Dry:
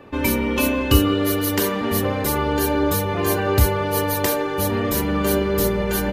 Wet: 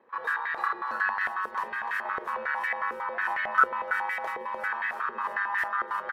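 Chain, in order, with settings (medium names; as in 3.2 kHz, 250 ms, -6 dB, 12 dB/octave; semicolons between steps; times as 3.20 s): ring modulator 1.4 kHz; feedback delay 299 ms, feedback 31%, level -10 dB; step-sequenced band-pass 11 Hz 460–1900 Hz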